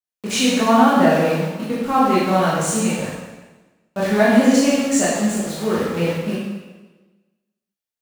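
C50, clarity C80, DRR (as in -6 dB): -1.0 dB, 1.0 dB, -8.5 dB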